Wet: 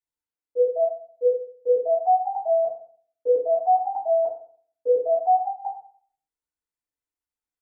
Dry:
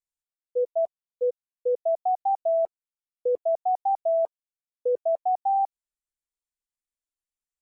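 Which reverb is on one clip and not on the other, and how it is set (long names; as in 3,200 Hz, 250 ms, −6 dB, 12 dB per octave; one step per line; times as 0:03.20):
feedback delay network reverb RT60 0.51 s, low-frequency decay 1.1×, high-frequency decay 0.3×, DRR −9 dB
level −8.5 dB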